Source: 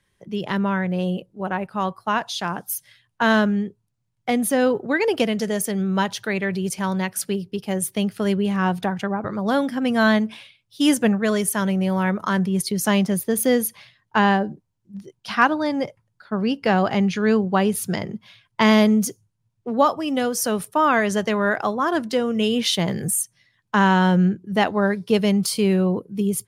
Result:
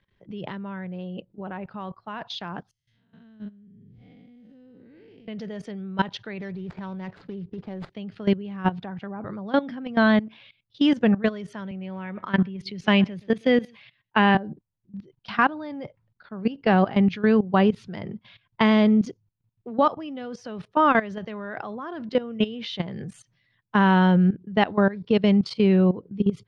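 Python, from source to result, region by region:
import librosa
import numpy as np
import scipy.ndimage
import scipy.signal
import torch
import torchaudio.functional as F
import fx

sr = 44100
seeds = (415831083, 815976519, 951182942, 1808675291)

y = fx.chain(x, sr, fx.spec_blur(span_ms=232.0),
    fx.tone_stack(knobs='10-0-1'),
    fx.sustainer(db_per_s=21.0), at=(2.71, 5.28))
y = fx.chain(y, sr, fx.median_filter(points=15),
    fx.over_compress(threshold_db=-30.0, ratio=-1.0), at=(6.4, 7.9))
y = fx.chain(y, sr, fx.peak_eq(hz=2500.0, db=7.5, octaves=0.91),
    fx.echo_single(ms=125, db=-23.5),
    fx.band_widen(depth_pct=40), at=(11.71, 14.35))
y = scipy.signal.sosfilt(scipy.signal.butter(4, 4100.0, 'lowpass', fs=sr, output='sos'), y)
y = fx.low_shelf(y, sr, hz=350.0, db=4.0)
y = fx.level_steps(y, sr, step_db=17)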